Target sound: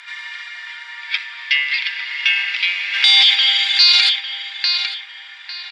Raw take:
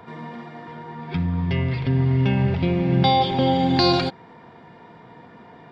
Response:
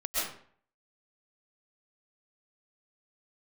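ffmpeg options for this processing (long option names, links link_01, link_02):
-filter_complex "[0:a]asplit=3[link_01][link_02][link_03];[link_01]afade=type=out:start_time=2.93:duration=0.02[link_04];[link_02]acontrast=70,afade=type=in:start_time=2.93:duration=0.02,afade=type=out:start_time=3.34:duration=0.02[link_05];[link_03]afade=type=in:start_time=3.34:duration=0.02[link_06];[link_04][link_05][link_06]amix=inputs=3:normalize=0,asuperpass=centerf=4900:order=8:qfactor=0.54,asplit=2[link_07][link_08];[link_08]adelay=851,lowpass=frequency=3900:poles=1,volume=-10.5dB,asplit=2[link_09][link_10];[link_10]adelay=851,lowpass=frequency=3900:poles=1,volume=0.32,asplit=2[link_11][link_12];[link_12]adelay=851,lowpass=frequency=3900:poles=1,volume=0.32[link_13];[link_07][link_09][link_11][link_13]amix=inputs=4:normalize=0,alimiter=level_in=20.5dB:limit=-1dB:release=50:level=0:latency=1,volume=-1dB"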